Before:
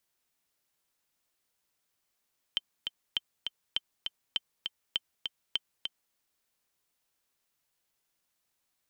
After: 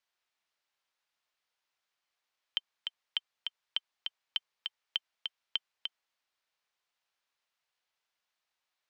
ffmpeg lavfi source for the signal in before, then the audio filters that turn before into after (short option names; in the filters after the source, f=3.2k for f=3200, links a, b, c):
-f lavfi -i "aevalsrc='pow(10,(-15-5*gte(mod(t,2*60/201),60/201))/20)*sin(2*PI*3110*mod(t,60/201))*exp(-6.91*mod(t,60/201)/0.03)':d=3.58:s=44100"
-filter_complex "[0:a]acrossover=split=570 5400:gain=0.2 1 0.141[a][b][c];[a][b][c]amix=inputs=3:normalize=0"